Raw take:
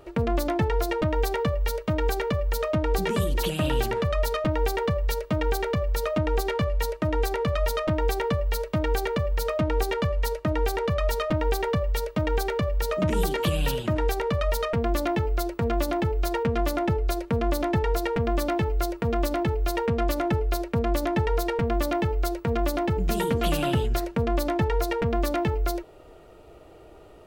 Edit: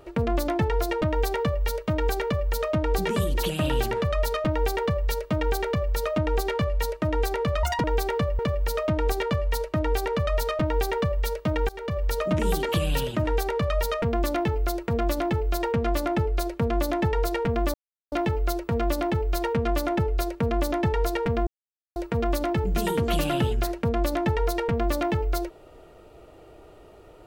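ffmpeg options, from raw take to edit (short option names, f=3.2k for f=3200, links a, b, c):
-filter_complex "[0:a]asplit=8[a][b][c][d][e][f][g][h];[a]atrim=end=7.634[i];[b]atrim=start=7.63:end=7.95,asetpts=PTS-STARTPTS,asetrate=67473,aresample=44100[j];[c]atrim=start=7.946:end=8.502[k];[d]atrim=start=9.098:end=12.4,asetpts=PTS-STARTPTS,afade=t=out:st=3.298:d=0.004:c=hsin:silence=0.0749894[l];[e]atrim=start=12.4:end=18.45,asetpts=PTS-STARTPTS,afade=t=in:d=0.33:silence=0.0749894,afade=t=out:st=6.046:d=0.004:c=hsin,apad=pad_dur=0.38[m];[f]atrim=start=18.45:end=21.8,asetpts=PTS-STARTPTS,afade=t=in:d=0.004:c=hsin,afade=t=out:st=3.346:d=0.004:c=hsin[n];[g]atrim=start=21.8:end=22.29,asetpts=PTS-STARTPTS,volume=0[o];[h]atrim=start=22.29,asetpts=PTS-STARTPTS,afade=t=in:d=0.004:c=hsin[p];[i][j]acrossfade=d=0.004:c1=hsin:c2=hsin[q];[q][k]acrossfade=d=0.004:c1=hsin:c2=hsin[r];[l][m][n][o][p]concat=n=5:v=0:a=1[s];[r][s]acrossfade=d=0.004:c1=hsin:c2=hsin"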